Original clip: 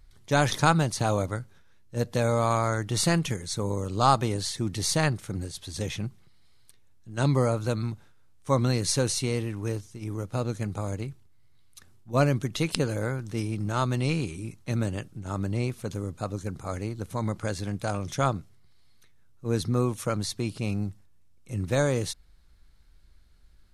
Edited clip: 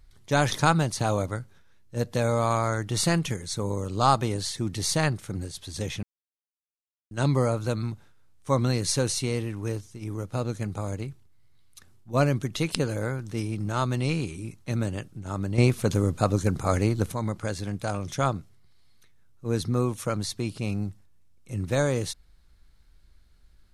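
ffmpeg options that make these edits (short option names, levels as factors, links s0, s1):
-filter_complex "[0:a]asplit=5[s0][s1][s2][s3][s4];[s0]atrim=end=6.03,asetpts=PTS-STARTPTS,afade=t=out:st=6.026:d=0.004:c=hsin[s5];[s1]atrim=start=6.03:end=7.11,asetpts=PTS-STARTPTS,volume=0[s6];[s2]atrim=start=7.11:end=15.582,asetpts=PTS-STARTPTS,afade=t=in:d=0.004:c=hsin[s7];[s3]atrim=start=15.578:end=17.122,asetpts=PTS-STARTPTS,volume=2.82[s8];[s4]atrim=start=17.118[s9];[s5][s6][s7]concat=n=3:v=0:a=1[s10];[s10][s8]acrossfade=d=0.004:c1=hsin:c2=hsin[s11];[s11][s9]acrossfade=d=0.004:c1=hsin:c2=hsin"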